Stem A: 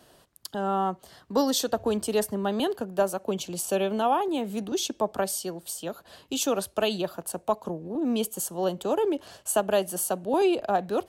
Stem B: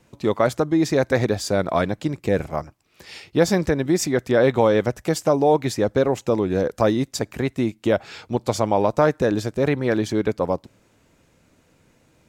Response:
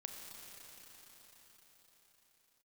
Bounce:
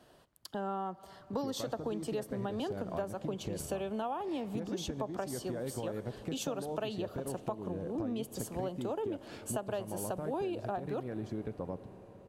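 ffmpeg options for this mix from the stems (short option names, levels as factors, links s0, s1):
-filter_complex "[0:a]volume=0.596,asplit=2[s0][s1];[s1]volume=0.188[s2];[1:a]lowshelf=f=360:g=10.5,acompressor=threshold=0.0891:ratio=6,adelay=1200,volume=0.178,asplit=2[s3][s4];[s4]volume=0.562[s5];[2:a]atrim=start_sample=2205[s6];[s2][s5]amix=inputs=2:normalize=0[s7];[s7][s6]afir=irnorm=-1:irlink=0[s8];[s0][s3][s8]amix=inputs=3:normalize=0,highshelf=f=4300:g=-9,acompressor=threshold=0.0224:ratio=6"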